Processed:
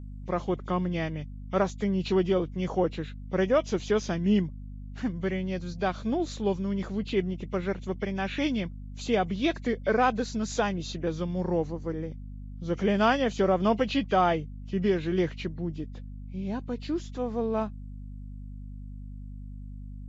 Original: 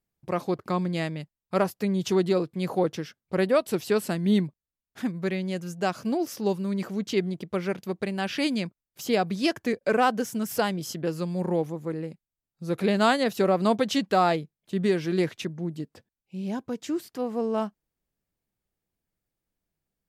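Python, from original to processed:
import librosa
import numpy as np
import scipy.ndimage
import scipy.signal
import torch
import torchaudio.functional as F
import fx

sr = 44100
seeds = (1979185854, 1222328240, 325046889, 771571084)

y = fx.freq_compress(x, sr, knee_hz=1900.0, ratio=1.5)
y = fx.add_hum(y, sr, base_hz=50, snr_db=11)
y = F.gain(torch.from_numpy(y), -1.5).numpy()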